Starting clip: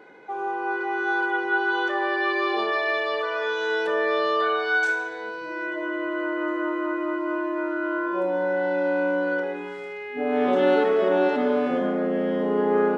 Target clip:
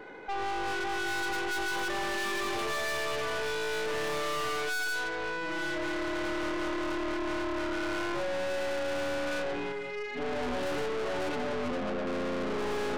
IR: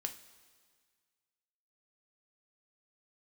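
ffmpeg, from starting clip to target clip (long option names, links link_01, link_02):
-filter_complex "[0:a]asettb=1/sr,asplit=3[link_01][link_02][link_03];[link_01]atrim=end=9.724[link_04];[link_02]atrim=start=9.72:end=12.07,asetpts=PTS-STARTPTS,afade=type=in:duration=0.004:curve=qsin,afade=type=out:start_time=2.346:duration=0.004:curve=qsin,flanger=delay=9:depth=3.2:regen=30:speed=1.8:shape=triangular[link_05];[link_03]atrim=start=12.066[link_06];[link_04][link_05]acrossfade=duration=0.004:curve1=hsin:curve2=qsin[link_07];[link_07][link_06]acrossfade=duration=0.004:curve1=qsin:curve2=hsin,aeval=exprs='(tanh(70.8*val(0)+0.55)-tanh(0.55))/70.8':channel_layout=same,volume=5.5dB"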